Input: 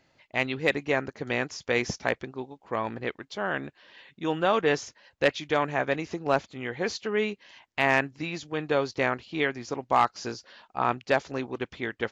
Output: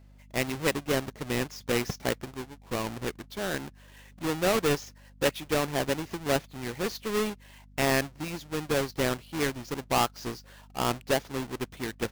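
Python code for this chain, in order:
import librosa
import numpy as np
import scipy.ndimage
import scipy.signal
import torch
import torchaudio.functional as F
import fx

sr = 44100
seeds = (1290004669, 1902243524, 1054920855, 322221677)

y = fx.halfwave_hold(x, sr)
y = fx.add_hum(y, sr, base_hz=50, snr_db=23)
y = y * librosa.db_to_amplitude(-6.5)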